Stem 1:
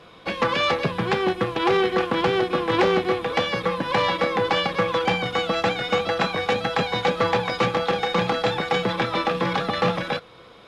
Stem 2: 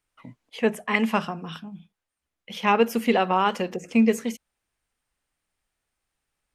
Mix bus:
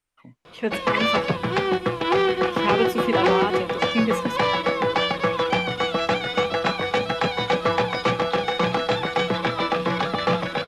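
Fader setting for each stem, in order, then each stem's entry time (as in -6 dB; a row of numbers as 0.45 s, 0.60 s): 0.0 dB, -3.5 dB; 0.45 s, 0.00 s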